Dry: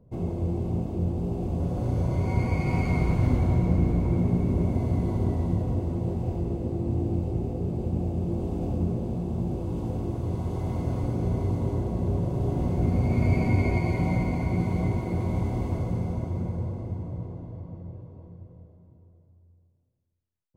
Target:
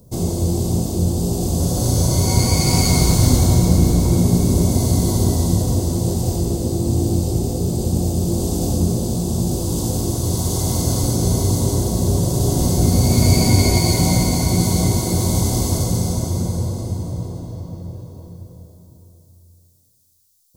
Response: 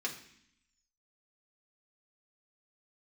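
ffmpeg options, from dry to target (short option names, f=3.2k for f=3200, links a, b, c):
-af "aexciter=amount=9.8:drive=8.5:freq=3.8k,volume=8.5dB"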